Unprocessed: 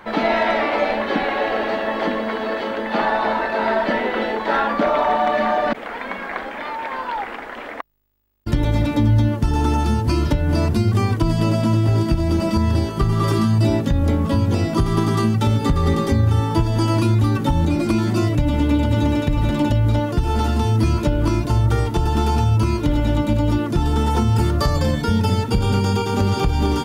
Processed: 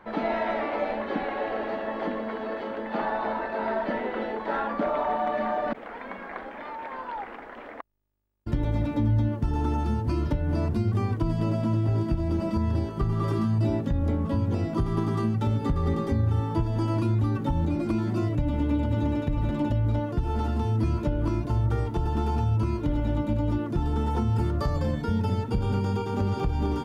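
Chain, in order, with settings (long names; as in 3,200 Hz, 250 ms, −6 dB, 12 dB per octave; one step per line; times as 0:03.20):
high-shelf EQ 2,400 Hz −11.5 dB
level −7.5 dB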